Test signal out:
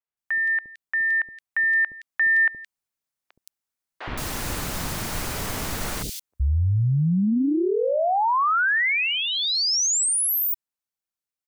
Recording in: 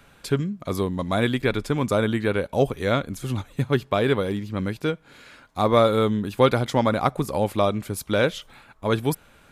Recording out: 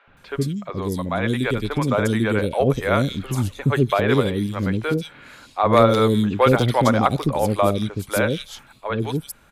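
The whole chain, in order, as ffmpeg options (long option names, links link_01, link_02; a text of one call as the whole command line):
ffmpeg -i in.wav -filter_complex "[0:a]aeval=exprs='0.398*(abs(mod(val(0)/0.398+3,4)-2)-1)':channel_layout=same,dynaudnorm=framelen=330:gausssize=11:maxgain=5dB,acrossover=split=460|3200[link_01][link_02][link_03];[link_01]adelay=70[link_04];[link_03]adelay=170[link_05];[link_04][link_02][link_05]amix=inputs=3:normalize=0,volume=1dB" out.wav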